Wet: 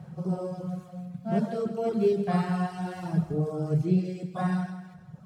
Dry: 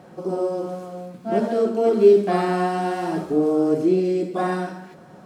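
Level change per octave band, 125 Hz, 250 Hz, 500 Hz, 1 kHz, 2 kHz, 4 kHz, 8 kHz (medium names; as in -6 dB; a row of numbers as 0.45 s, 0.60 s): +4.0 dB, -5.5 dB, -11.5 dB, -10.0 dB, -8.5 dB, -8.5 dB, no reading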